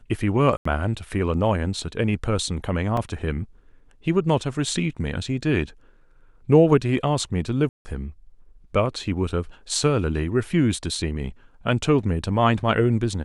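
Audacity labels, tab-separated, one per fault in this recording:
0.570000	0.650000	drop-out 84 ms
2.970000	2.970000	drop-out 3.2 ms
7.690000	7.850000	drop-out 160 ms

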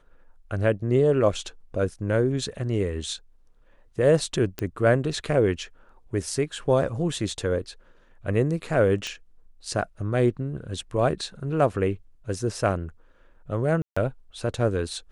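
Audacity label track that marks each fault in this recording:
4.590000	4.590000	click −14 dBFS
9.070000	9.070000	click −18 dBFS
13.820000	13.960000	drop-out 145 ms

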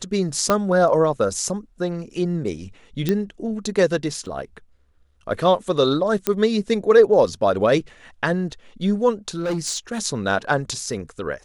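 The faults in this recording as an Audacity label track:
0.500000	0.500000	click −4 dBFS
3.090000	3.090000	click −8 dBFS
4.260000	4.260000	drop-out 4.3 ms
6.270000	6.270000	click −4 dBFS
9.380000	9.990000	clipping −20 dBFS

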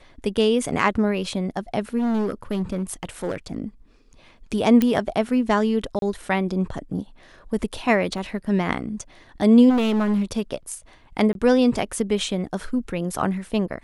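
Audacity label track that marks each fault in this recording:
1.980000	3.570000	clipping −20 dBFS
4.820000	4.820000	click −8 dBFS
5.990000	6.020000	drop-out 32 ms
8.180000	8.180000	drop-out 2.1 ms
9.690000	10.230000	clipping −17.5 dBFS
11.330000	11.350000	drop-out 22 ms

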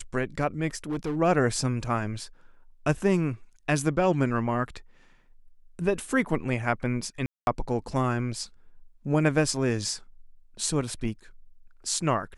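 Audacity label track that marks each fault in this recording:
0.750000	1.170000	clipping −25.5 dBFS
7.260000	7.470000	drop-out 211 ms

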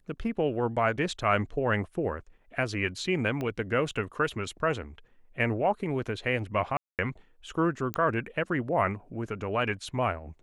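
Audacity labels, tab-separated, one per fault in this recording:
3.410000	3.410000	click −21 dBFS
6.770000	6.990000	drop-out 218 ms
7.940000	7.940000	click −15 dBFS

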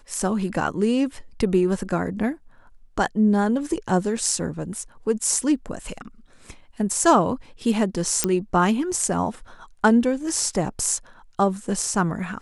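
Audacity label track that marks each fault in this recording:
4.170000	4.170000	drop-out 3 ms
8.240000	8.240000	click −3 dBFS

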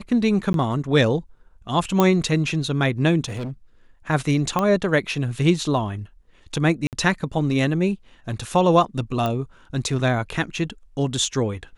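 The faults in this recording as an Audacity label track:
0.530000	0.540000	drop-out 12 ms
2.000000	2.000000	click −5 dBFS
3.250000	3.510000	clipping −26 dBFS
4.590000	4.590000	click −9 dBFS
6.870000	6.930000	drop-out 58 ms
9.260000	9.260000	click −12 dBFS

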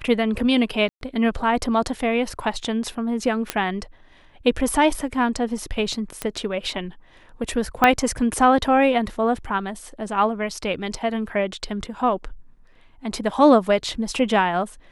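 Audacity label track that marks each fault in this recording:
0.890000	1.010000	drop-out 122 ms
3.500000	3.500000	click −6 dBFS
6.220000	6.220000	click −10 dBFS
7.840000	7.840000	click −3 dBFS

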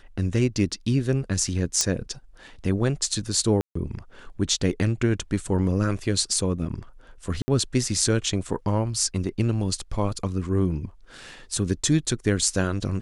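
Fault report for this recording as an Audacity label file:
1.810000	1.810000	click −7 dBFS
3.610000	3.750000	drop-out 144 ms
7.420000	7.480000	drop-out 60 ms

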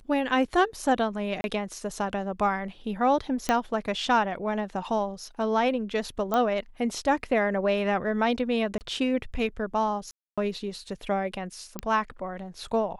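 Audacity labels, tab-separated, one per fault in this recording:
1.410000	1.440000	drop-out 31 ms
3.490000	3.490000	click −10 dBFS
6.340000	6.340000	click −13 dBFS
8.780000	8.810000	drop-out 29 ms
10.110000	10.380000	drop-out 266 ms
11.790000	11.790000	click −16 dBFS

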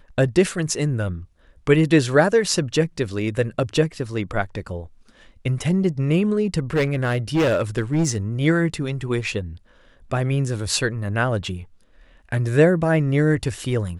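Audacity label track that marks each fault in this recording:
6.740000	8.170000	clipping −15 dBFS

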